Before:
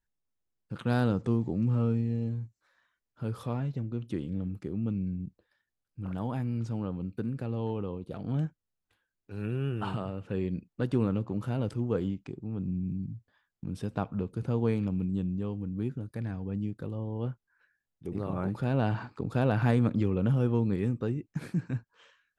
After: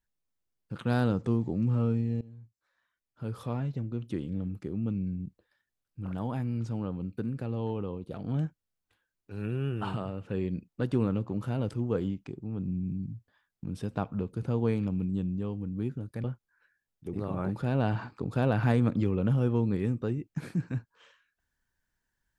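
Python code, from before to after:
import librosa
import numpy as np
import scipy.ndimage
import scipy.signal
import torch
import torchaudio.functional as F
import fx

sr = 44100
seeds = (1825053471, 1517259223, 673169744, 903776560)

y = fx.edit(x, sr, fx.fade_in_from(start_s=2.21, length_s=1.37, floor_db=-20.5),
    fx.cut(start_s=16.24, length_s=0.99), tone=tone)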